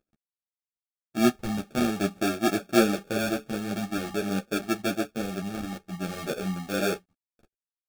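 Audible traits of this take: a quantiser's noise floor 12-bit, dither none; phasing stages 2, 0.48 Hz, lowest notch 520–1100 Hz; aliases and images of a low sample rate 1 kHz, jitter 0%; a shimmering, thickened sound

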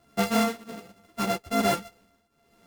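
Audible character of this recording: a buzz of ramps at a fixed pitch in blocks of 64 samples; tremolo triangle 1.2 Hz, depth 85%; a shimmering, thickened sound

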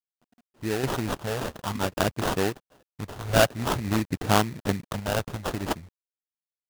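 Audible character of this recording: a quantiser's noise floor 10-bit, dither none; phasing stages 12, 0.53 Hz, lowest notch 300–3400 Hz; aliases and images of a low sample rate 2.2 kHz, jitter 20%; random-step tremolo 1.2 Hz, depth 75%

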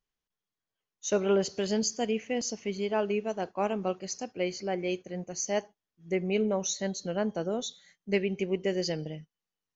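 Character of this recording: noise floor -91 dBFS; spectral tilt -4.0 dB/octave

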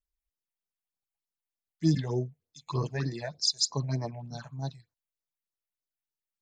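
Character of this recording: phasing stages 6, 3.3 Hz, lowest notch 300–3100 Hz

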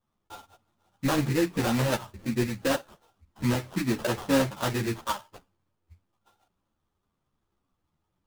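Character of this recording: aliases and images of a low sample rate 2.2 kHz, jitter 20%; a shimmering, thickened sound

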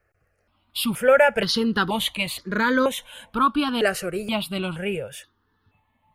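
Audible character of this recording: notches that jump at a steady rate 2.1 Hz 960–2700 Hz

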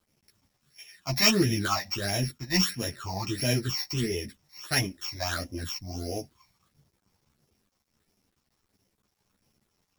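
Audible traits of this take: a buzz of ramps at a fixed pitch in blocks of 8 samples; phasing stages 8, 1.5 Hz, lowest notch 400–1300 Hz; a quantiser's noise floor 12-bit, dither none; a shimmering, thickened sound

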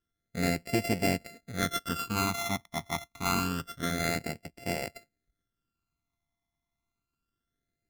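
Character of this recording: a buzz of ramps at a fixed pitch in blocks of 64 samples; phasing stages 12, 0.27 Hz, lowest notch 480–1200 Hz

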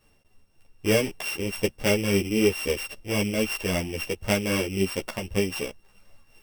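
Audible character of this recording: a buzz of ramps at a fixed pitch in blocks of 16 samples; tremolo triangle 3.8 Hz, depth 45%; a shimmering, thickened sound

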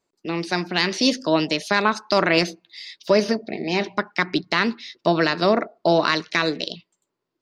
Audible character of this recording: noise floor -80 dBFS; spectral tilt -2.5 dB/octave

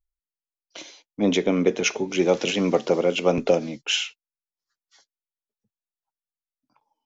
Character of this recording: noise floor -94 dBFS; spectral tilt -4.0 dB/octave

